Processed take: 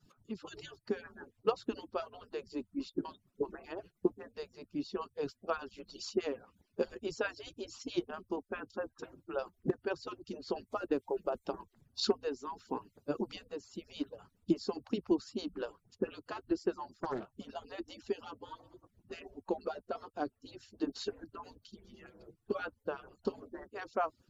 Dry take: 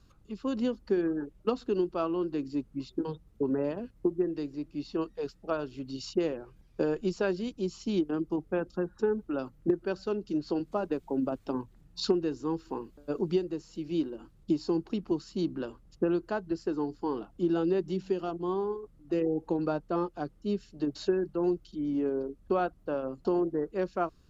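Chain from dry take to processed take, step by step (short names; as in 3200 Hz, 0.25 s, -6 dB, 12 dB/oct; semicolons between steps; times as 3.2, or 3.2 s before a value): median-filter separation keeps percussive; 16.94–17.34 Doppler distortion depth 0.57 ms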